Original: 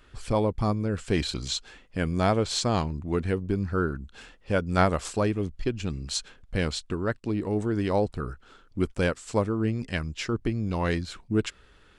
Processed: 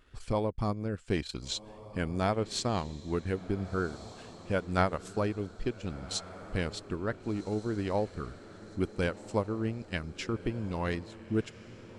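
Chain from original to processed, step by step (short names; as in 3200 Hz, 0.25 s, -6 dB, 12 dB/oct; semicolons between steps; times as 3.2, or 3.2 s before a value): transient shaper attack +2 dB, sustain -10 dB; vibrato 2.4 Hz 29 cents; diffused feedback echo 1.479 s, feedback 46%, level -15.5 dB; gain -6 dB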